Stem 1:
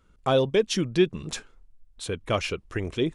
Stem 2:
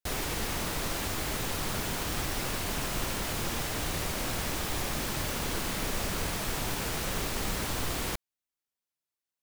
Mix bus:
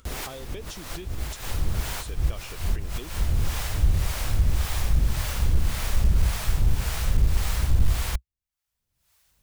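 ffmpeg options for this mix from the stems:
-filter_complex "[0:a]highshelf=f=3.9k:g=11,acompressor=threshold=-25dB:ratio=6,volume=-12.5dB,asplit=2[a][b];[1:a]asubboost=boost=7:cutoff=110,acrossover=split=490[c][d];[c]aeval=exprs='val(0)*(1-0.7/2+0.7/2*cos(2*PI*1.8*n/s))':c=same[e];[d]aeval=exprs='val(0)*(1-0.7/2-0.7/2*cos(2*PI*1.8*n/s))':c=same[f];[e][f]amix=inputs=2:normalize=0,volume=2dB[g];[b]apad=whole_len=415852[h];[g][h]sidechaincompress=threshold=-49dB:ratio=8:attack=16:release=143[i];[a][i]amix=inputs=2:normalize=0,equalizer=f=62:t=o:w=0.9:g=6.5,acompressor=mode=upward:threshold=-43dB:ratio=2.5,asoftclip=type=hard:threshold=-12dB"

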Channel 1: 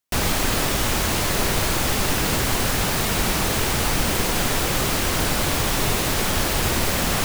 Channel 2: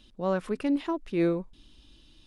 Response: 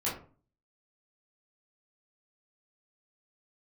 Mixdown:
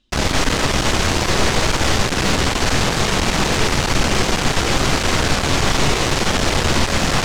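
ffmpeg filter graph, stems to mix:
-filter_complex "[0:a]volume=2.5dB,asplit=2[a][b];[b]volume=-11.5dB[c];[1:a]volume=-9dB[d];[2:a]atrim=start_sample=2205[e];[c][e]afir=irnorm=-1:irlink=0[f];[a][d][f]amix=inputs=3:normalize=0,lowpass=f=7.2k:w=0.5412,lowpass=f=7.2k:w=1.3066,acontrast=40,aeval=exprs='(tanh(3.98*val(0)+0.75)-tanh(0.75))/3.98':c=same"

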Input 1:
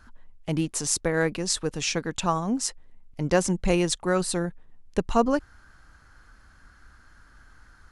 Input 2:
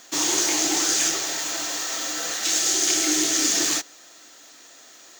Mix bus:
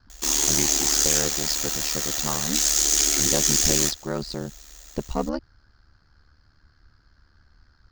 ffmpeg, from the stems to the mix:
-filter_complex "[0:a]lowpass=f=4.8k:t=q:w=6.8,tiltshelf=f=920:g=4.5,volume=-5.5dB[a];[1:a]highshelf=f=6.2k:g=11.5,adelay=100,volume=-2dB[b];[a][b]amix=inputs=2:normalize=0,aeval=exprs='0.562*(cos(1*acos(clip(val(0)/0.562,-1,1)))-cos(1*PI/2))+0.0224*(cos(8*acos(clip(val(0)/0.562,-1,1)))-cos(8*PI/2))':c=same,aeval=exprs='val(0)*sin(2*PI*37*n/s)':c=same"

